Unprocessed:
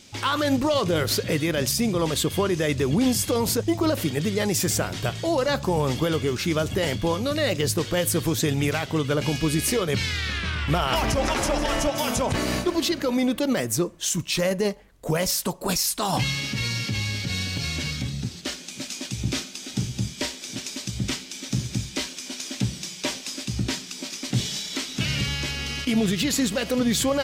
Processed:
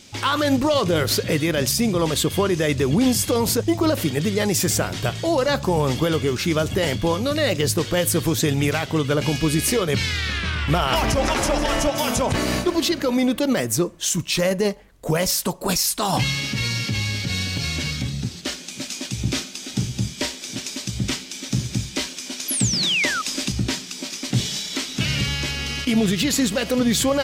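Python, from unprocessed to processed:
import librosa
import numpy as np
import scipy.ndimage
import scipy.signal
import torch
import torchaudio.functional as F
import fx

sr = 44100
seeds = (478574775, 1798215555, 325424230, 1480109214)

y = fx.spec_paint(x, sr, seeds[0], shape='fall', start_s=22.48, length_s=0.74, low_hz=1200.0, high_hz=12000.0, level_db=-27.0)
y = fx.band_squash(y, sr, depth_pct=100, at=(22.73, 23.52))
y = y * librosa.db_to_amplitude(3.0)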